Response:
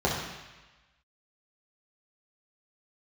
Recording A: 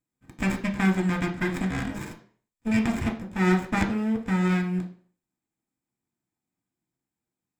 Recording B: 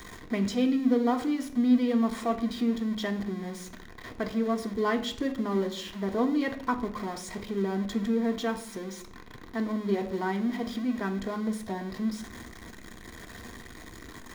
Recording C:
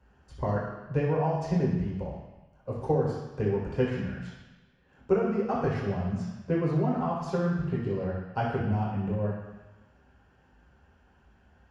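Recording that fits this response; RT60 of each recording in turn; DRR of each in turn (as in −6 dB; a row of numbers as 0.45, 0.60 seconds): C; 0.45, 0.60, 1.1 seconds; 1.0, 3.0, −5.5 decibels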